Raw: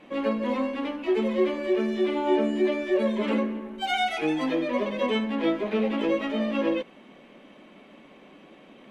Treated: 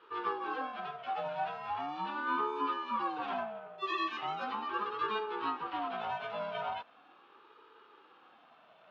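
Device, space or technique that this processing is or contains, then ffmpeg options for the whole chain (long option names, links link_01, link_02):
voice changer toy: -af "aeval=exprs='val(0)*sin(2*PI*520*n/s+520*0.25/0.39*sin(2*PI*0.39*n/s))':channel_layout=same,highpass=430,equalizer=frequency=480:width_type=q:width=4:gain=7,equalizer=frequency=910:width_type=q:width=4:gain=-4,equalizer=frequency=1300:width_type=q:width=4:gain=8,equalizer=frequency=2000:width_type=q:width=4:gain=-6,equalizer=frequency=4000:width_type=q:width=4:gain=-3,lowpass=frequency=5000:width=0.5412,lowpass=frequency=5000:width=1.3066,volume=-5.5dB"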